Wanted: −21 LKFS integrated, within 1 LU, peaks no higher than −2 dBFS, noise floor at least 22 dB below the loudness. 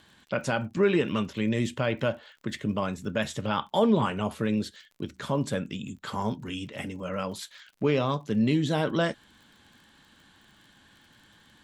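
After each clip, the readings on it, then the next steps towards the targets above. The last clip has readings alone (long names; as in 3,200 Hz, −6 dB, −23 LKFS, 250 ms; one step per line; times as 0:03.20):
crackle rate 39 per second; integrated loudness −28.5 LKFS; sample peak −12.0 dBFS; target loudness −21.0 LKFS
→ click removal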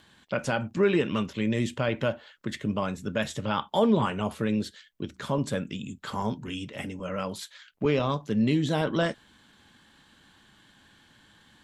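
crackle rate 0.17 per second; integrated loudness −28.5 LKFS; sample peak −12.0 dBFS; target loudness −21.0 LKFS
→ level +7.5 dB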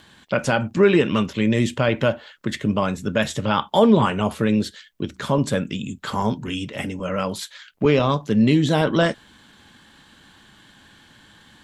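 integrated loudness −21.0 LKFS; sample peak −4.5 dBFS; background noise floor −52 dBFS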